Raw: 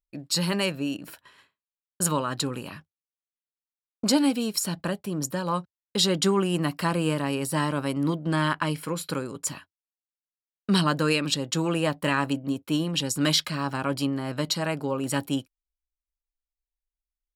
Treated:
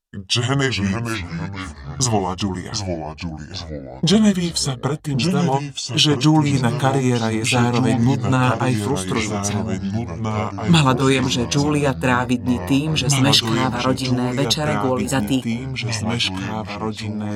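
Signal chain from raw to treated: gliding pitch shift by -6.5 st ending unshifted; notch 2200 Hz, Q 5.3; echoes that change speed 0.348 s, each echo -3 st, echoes 3, each echo -6 dB; gain +8.5 dB

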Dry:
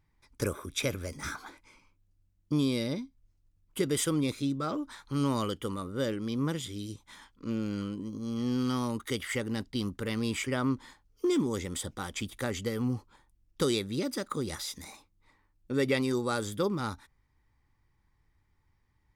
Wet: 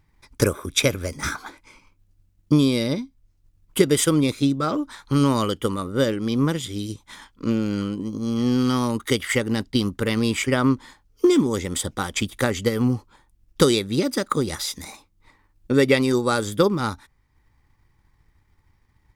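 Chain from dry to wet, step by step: transient shaper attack +4 dB, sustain -3 dB; gain +9 dB

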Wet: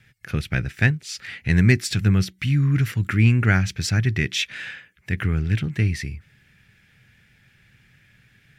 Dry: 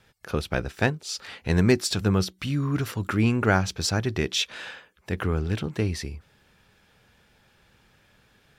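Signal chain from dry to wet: graphic EQ 125/500/1000/2000/4000 Hz +10/-7/-11/+12/-3 dB

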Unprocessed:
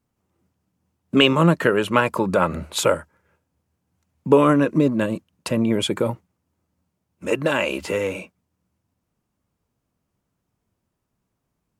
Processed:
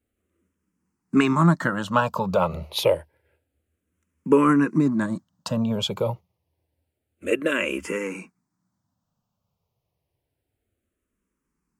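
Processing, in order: endless phaser -0.28 Hz

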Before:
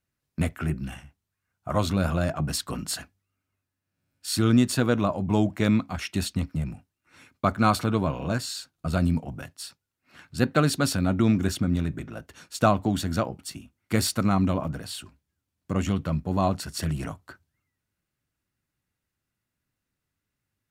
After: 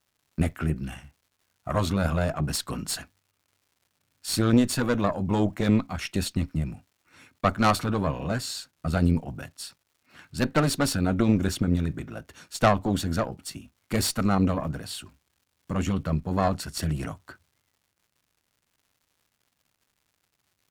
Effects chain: crackle 270/s -55 dBFS; added harmonics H 4 -13 dB, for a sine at -6 dBFS

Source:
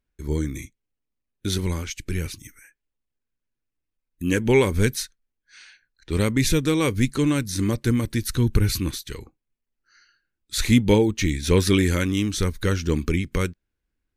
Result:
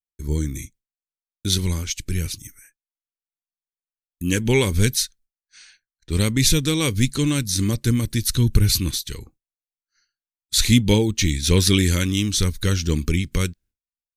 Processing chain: dynamic EQ 3500 Hz, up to +7 dB, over -43 dBFS, Q 1; expander -48 dBFS; tone controls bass +7 dB, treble +10 dB; gain -3.5 dB

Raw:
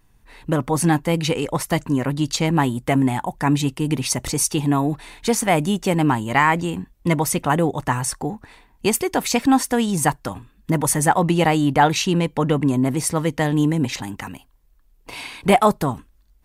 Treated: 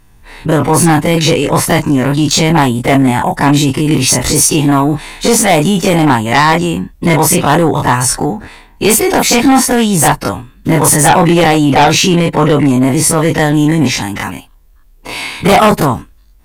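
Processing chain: spectral dilation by 60 ms; in parallel at -8 dB: sine folder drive 11 dB, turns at 1.5 dBFS; on the sum: gain -1.5 dB

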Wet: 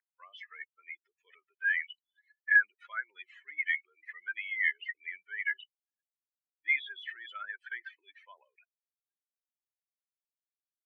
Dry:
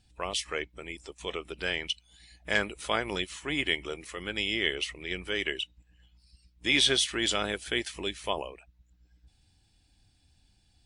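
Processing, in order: spectral contrast raised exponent 3.1; Butterworth band-pass 1800 Hz, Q 3.4; gain +6 dB

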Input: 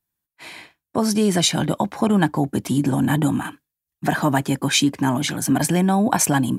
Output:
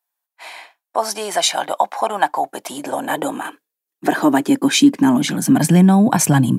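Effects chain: high-pass sweep 740 Hz -> 140 Hz, 2.41–6.12; gain +1.5 dB

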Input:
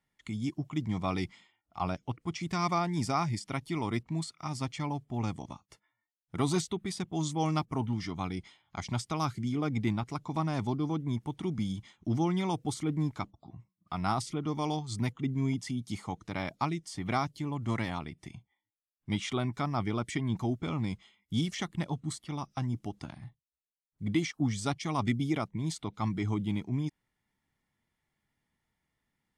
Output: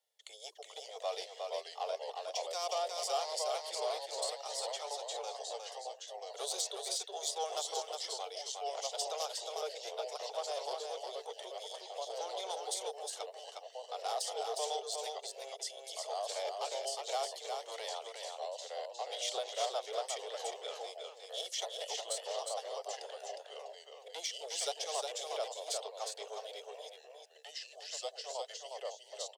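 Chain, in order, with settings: echoes that change speed 0.344 s, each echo -2 st, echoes 2, each echo -6 dB; soft clip -26.5 dBFS, distortion -13 dB; steep high-pass 440 Hz 96 dB/oct; band shelf 1500 Hz -14.5 dB; echo 0.36 s -4.5 dB; gain +4 dB

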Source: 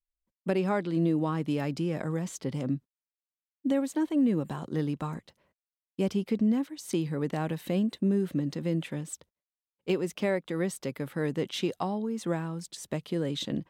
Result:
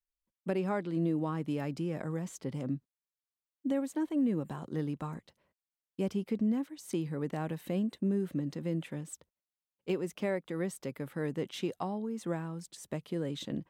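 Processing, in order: dynamic EQ 4100 Hz, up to -4 dB, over -54 dBFS, Q 1; gain -4.5 dB

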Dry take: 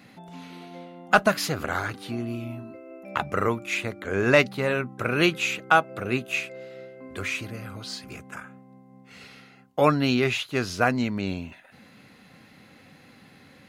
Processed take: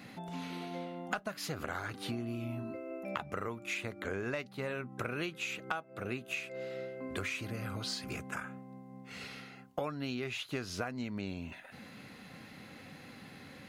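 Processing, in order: compressor 12:1, threshold -35 dBFS, peak gain reduction 23.5 dB; gain +1 dB

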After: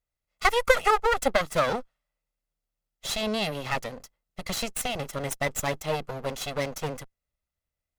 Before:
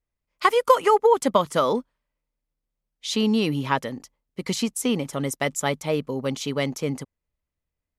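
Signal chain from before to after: minimum comb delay 1.5 ms; low shelf 370 Hz -3.5 dB

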